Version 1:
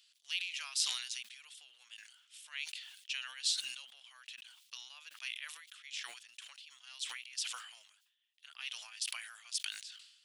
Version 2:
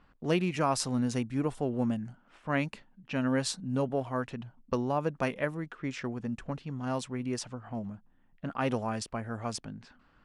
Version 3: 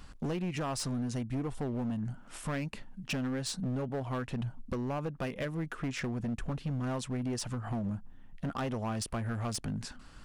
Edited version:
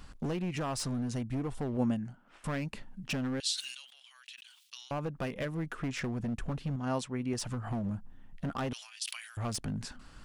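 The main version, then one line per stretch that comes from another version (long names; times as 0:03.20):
3
0:01.77–0:02.44: punch in from 2
0:03.40–0:04.91: punch in from 1
0:06.76–0:07.33: punch in from 2
0:08.73–0:09.37: punch in from 1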